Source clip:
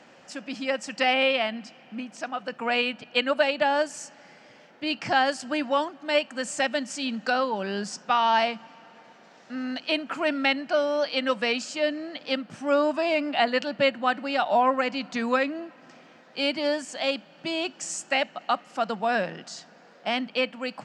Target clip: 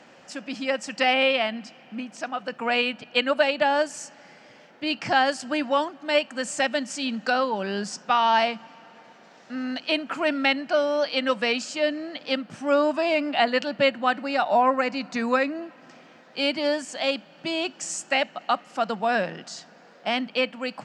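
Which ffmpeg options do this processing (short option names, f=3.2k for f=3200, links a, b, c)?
-filter_complex "[0:a]asettb=1/sr,asplit=3[a][b][c];[a]atrim=end=14.224[d];[b]atrim=start=14.22:end=15.62,asetpts=PTS-STARTPTS,afade=t=in:d=0.004:c=qsin,afade=t=out:st=1.396:d=0.004:c=qsin,equalizer=f=3.2k:w=7.7:g=-11[e];[c]atrim=start=15.616[f];[d][e]acrossfade=d=0.004:c1=hsin:c2=qsin[g];[g][f]acrossfade=d=0.004:c1=qsin:c2=hsin,volume=1.5dB"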